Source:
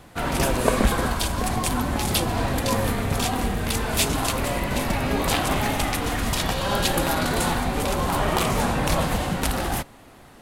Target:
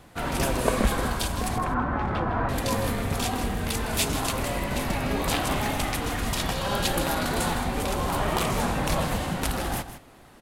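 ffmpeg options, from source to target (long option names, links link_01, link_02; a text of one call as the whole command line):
ffmpeg -i in.wav -filter_complex "[0:a]asettb=1/sr,asplit=3[link_01][link_02][link_03];[link_01]atrim=end=1.584[link_04];[link_02]atrim=start=1.58:end=2.49,asetpts=PTS-STARTPTS,afade=type=in:duration=0.004:curve=qsin,afade=type=out:start_time=0.906:duration=0.004:curve=qsin,lowpass=frequency=1400:width_type=q:width=2.2[link_05];[link_03]atrim=start=2.486[link_06];[link_04][link_05]acrossfade=duration=0.004:curve1=hsin:curve2=qsin[link_07];[link_07][link_06]acrossfade=duration=0.004:curve1=qsin:curve2=hsin,aecho=1:1:159:0.251,volume=-3.5dB" out.wav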